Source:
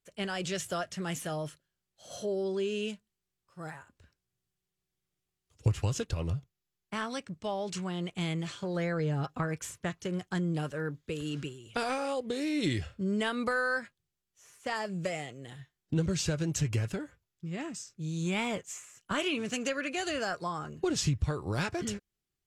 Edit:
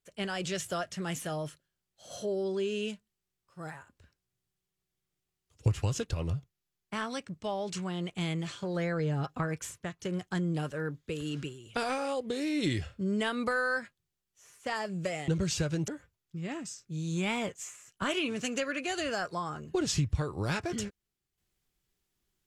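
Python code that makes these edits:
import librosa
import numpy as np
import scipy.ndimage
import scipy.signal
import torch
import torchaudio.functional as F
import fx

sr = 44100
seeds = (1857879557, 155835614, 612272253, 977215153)

y = fx.edit(x, sr, fx.fade_out_to(start_s=9.67, length_s=0.32, floor_db=-7.5),
    fx.cut(start_s=15.28, length_s=0.68),
    fx.cut(start_s=16.56, length_s=0.41), tone=tone)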